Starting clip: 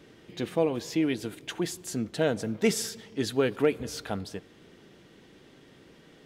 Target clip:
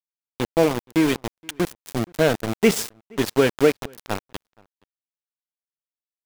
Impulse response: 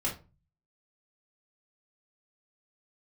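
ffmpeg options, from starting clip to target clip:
-filter_complex "[0:a]aeval=exprs='val(0)*gte(abs(val(0)),0.0398)':c=same,asplit=2[s0][s1];[s1]adelay=472.3,volume=0.0398,highshelf=f=4000:g=-10.6[s2];[s0][s2]amix=inputs=2:normalize=0,volume=2.37"

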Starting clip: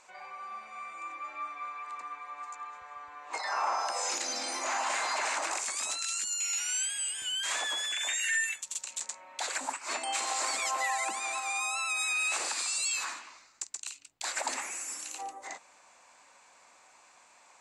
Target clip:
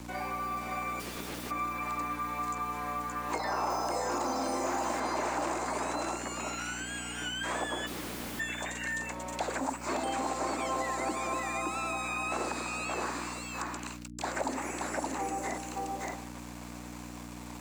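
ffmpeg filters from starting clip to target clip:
-filter_complex "[0:a]acrossover=split=1600[s0][s1];[s1]acompressor=threshold=0.00631:ratio=6[s2];[s0][s2]amix=inputs=2:normalize=0,bandreject=f=112.4:t=h:w=4,bandreject=f=224.8:t=h:w=4,bandreject=f=337.2:t=h:w=4,bandreject=f=449.6:t=h:w=4,bandreject=f=562:t=h:w=4,bandreject=f=674.4:t=h:w=4,bandreject=f=786.8:t=h:w=4,asplit=2[s3][s4];[s4]aecho=0:1:573:0.596[s5];[s3][s5]amix=inputs=2:normalize=0,acrusher=bits=8:mix=0:aa=0.5,asplit=3[s6][s7][s8];[s6]afade=t=out:st=0.99:d=0.02[s9];[s7]aeval=exprs='(mod(141*val(0)+1,2)-1)/141':c=same,afade=t=in:st=0.99:d=0.02,afade=t=out:st=1.5:d=0.02[s10];[s8]afade=t=in:st=1.5:d=0.02[s11];[s9][s10][s11]amix=inputs=3:normalize=0,asettb=1/sr,asplit=3[s12][s13][s14];[s12]atrim=end=3.704[s15];[s13]atrim=start=3.7:end=5,asetpts=PTS-STARTPTS,afade=t=in:d=0.004:c=qsin,afade=t=out:st=1.296:d=0.004:c=qsin,highshelf=f=7100:g=10[s16];[s14]atrim=start=4.996[s17];[s15][s16]acrossfade=d=0.004:c1=hsin:c2=qsin[s18];[s18][s17]acrossfade=d=0.004:c1=qsin:c2=hsin,asplit=3[s19][s20][s21];[s19]afade=t=out:st=7.86:d=0.02[s22];[s20]aeval=exprs='(mod(112*val(0)+1,2)-1)/112':c=same,afade=t=in:st=7.86:d=0.02,afade=t=out:st=8.39:d=0.02[s23];[s21]afade=t=in:st=8.39:d=0.02[s24];[s22][s23][s24]amix=inputs=3:normalize=0,aeval=exprs='val(0)+0.00178*(sin(2*PI*60*n/s)+sin(2*PI*2*60*n/s)/2+sin(2*PI*3*60*n/s)/3+sin(2*PI*4*60*n/s)/4+sin(2*PI*5*60*n/s)/5)':c=same,equalizer=f=280:w=0.65:g=13,acrossover=split=200|410|3000[s25][s26][s27][s28];[s25]acompressor=threshold=0.002:ratio=4[s29];[s26]acompressor=threshold=0.00447:ratio=4[s30];[s27]acompressor=threshold=0.00794:ratio=4[s31];[s28]acompressor=threshold=0.00251:ratio=4[s32];[s29][s30][s31][s32]amix=inputs=4:normalize=0,volume=2.51"

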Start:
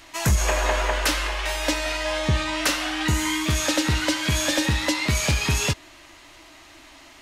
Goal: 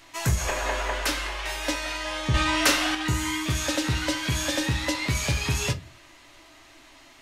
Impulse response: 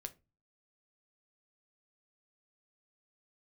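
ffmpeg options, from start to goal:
-filter_complex "[0:a]asettb=1/sr,asplit=3[s0][s1][s2];[s0]atrim=end=2.344[s3];[s1]atrim=start=2.34:end=2.95,asetpts=PTS-STARTPTS,afade=t=in:d=0.004:c=qsin,afade=t=out:st=0.606:d=0.004:c=qsin,acontrast=63[s4];[s2]atrim=start=2.946[s5];[s3][s4]acrossfade=d=0.004:c1=hsin:c2=qsin[s6];[s6][s5]acrossfade=d=0.004:c1=qsin:c2=hsin[s7];[1:a]atrim=start_sample=2205[s8];[s7][s8]afir=irnorm=-1:irlink=0"

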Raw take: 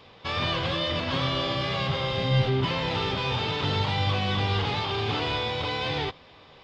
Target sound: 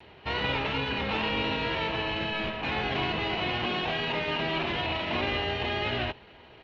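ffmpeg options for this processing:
-af "afftfilt=real='re*lt(hypot(re,im),0.224)':imag='im*lt(hypot(re,im),0.224)':win_size=1024:overlap=0.75,asetrate=36028,aresample=44100,atempo=1.22405"

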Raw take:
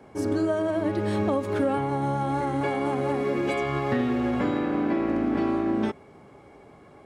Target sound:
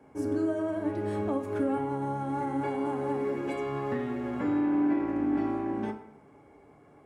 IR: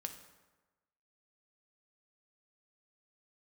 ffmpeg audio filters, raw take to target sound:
-filter_complex "[0:a]equalizer=f=4000:t=o:w=0.95:g=-8[s0];[1:a]atrim=start_sample=2205,asetrate=70560,aresample=44100[s1];[s0][s1]afir=irnorm=-1:irlink=0"

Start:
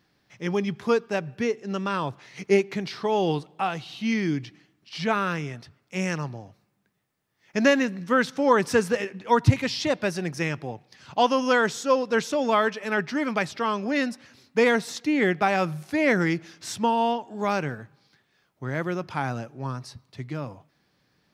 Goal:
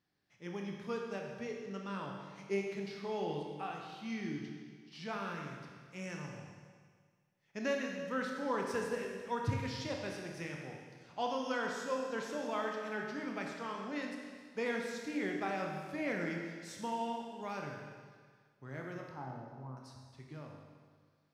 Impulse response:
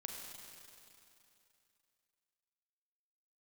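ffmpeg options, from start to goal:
-filter_complex "[0:a]asettb=1/sr,asplit=3[s0][s1][s2];[s0]atrim=end=19.094[s3];[s1]atrim=start=19.09:end=19.77,asetpts=PTS-STARTPTS,afade=t=in:d=0.004:c=qsin,afade=t=out:st=0.676:d=0.004:c=qsin,lowpass=f=1100:w=0.5412,lowpass=f=1100:w=1.3066[s4];[s2]atrim=start=19.766[s5];[s3][s4]acrossfade=d=0.004:c1=hsin:c2=qsin[s6];[s6][s5]acrossfade=d=0.004:c1=qsin:c2=hsin[s7];[1:a]atrim=start_sample=2205,asetrate=70560,aresample=44100[s8];[s7][s8]afir=irnorm=-1:irlink=0,volume=0.398"

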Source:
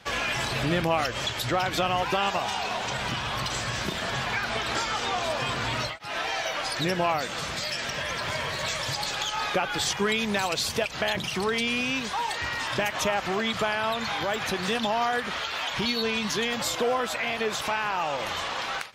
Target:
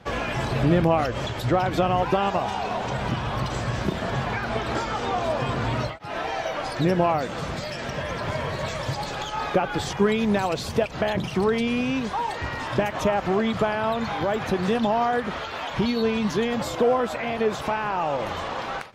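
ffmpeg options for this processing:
-af "tiltshelf=f=1300:g=8"

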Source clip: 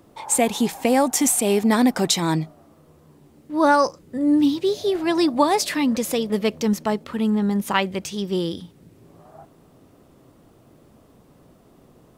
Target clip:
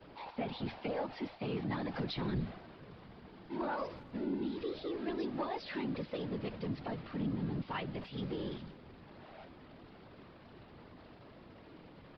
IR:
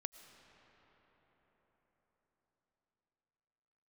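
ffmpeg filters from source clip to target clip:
-filter_complex "[0:a]aeval=exprs='val(0)+0.5*0.0668*sgn(val(0))':c=same,acrossover=split=4300[s0][s1];[s1]acompressor=threshold=0.00708:ratio=4:attack=1:release=60[s2];[s0][s2]amix=inputs=2:normalize=0,agate=range=0.0224:threshold=0.0794:ratio=3:detection=peak,asettb=1/sr,asplit=3[s3][s4][s5];[s3]atrim=end=0.544[s6];[s4]atrim=start=0.54:end=3.57,asetpts=PTS-STARTPTS,afade=t=in:d=0.004:c=qsin,afade=t=out:st=3.026:d=0.004:c=qsin,aecho=1:1:5.7:0.59,atrim=end_sample=133623[s7];[s5]atrim=start=3.566[s8];[s6][s7]acrossfade=d=0.004:c1=hsin:c2=qsin[s9];[s9][s8]acrossfade=d=0.004:c1=qsin:c2=hsin,acrossover=split=130[s10][s11];[s11]acompressor=threshold=0.0398:ratio=2[s12];[s10][s12]amix=inputs=2:normalize=0,afftfilt=real='hypot(re,im)*cos(2*PI*random(0))':imag='hypot(re,im)*sin(2*PI*random(1))':win_size=512:overlap=0.75,asoftclip=type=tanh:threshold=0.0891,aresample=11025,aresample=44100,asplit=2[s13][s14];[s14]adelay=280,highpass=300,lowpass=3400,asoftclip=type=hard:threshold=0.0316,volume=0.0794[s15];[s13][s15]amix=inputs=2:normalize=0,volume=0.501" -ar 44100 -c:a libvorbis -b:a 64k

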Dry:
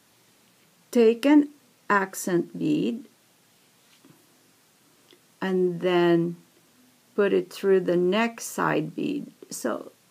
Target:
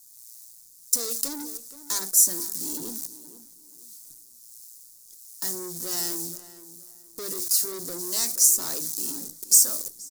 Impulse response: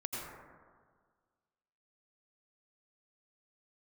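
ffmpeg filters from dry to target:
-filter_complex "[0:a]bandreject=f=50:t=h:w=6,bandreject=f=100:t=h:w=6,bandreject=f=150:t=h:w=6,bandreject=f=200:t=h:w=6,bandreject=f=250:t=h:w=6,bandreject=f=300:t=h:w=6,bandreject=f=350:t=h:w=6,agate=range=0.501:threshold=0.00251:ratio=16:detection=peak,equalizer=f=120:t=o:w=0.35:g=12.5,acrossover=split=200|1700[s0][s1][s2];[s0]acompressor=threshold=0.00891:ratio=6[s3];[s3][s1][s2]amix=inputs=3:normalize=0,acrusher=bits=8:dc=4:mix=0:aa=0.000001,acrossover=split=880[s4][s5];[s4]aeval=exprs='val(0)*(1-0.5/2+0.5/2*cos(2*PI*1.4*n/s))':c=same[s6];[s5]aeval=exprs='val(0)*(1-0.5/2-0.5/2*cos(2*PI*1.4*n/s))':c=same[s7];[s6][s7]amix=inputs=2:normalize=0,asoftclip=type=tanh:threshold=0.0376,aexciter=amount=13.2:drive=9.9:freq=4600,asplit=2[s8][s9];[s9]adelay=474,lowpass=f=2100:p=1,volume=0.2,asplit=2[s10][s11];[s11]adelay=474,lowpass=f=2100:p=1,volume=0.28,asplit=2[s12][s13];[s13]adelay=474,lowpass=f=2100:p=1,volume=0.28[s14];[s10][s12][s14]amix=inputs=3:normalize=0[s15];[s8][s15]amix=inputs=2:normalize=0,volume=0.447"

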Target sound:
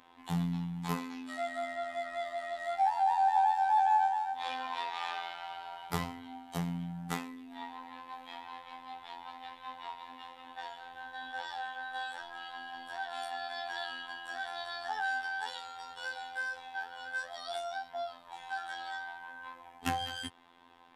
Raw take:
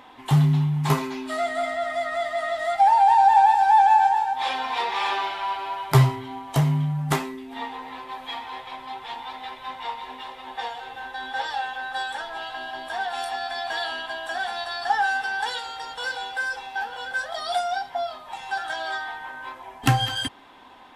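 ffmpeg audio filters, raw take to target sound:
-af "afftfilt=real='hypot(re,im)*cos(PI*b)':imag='0':win_size=2048:overlap=0.75,bandreject=f=630:w=12,volume=0.376"

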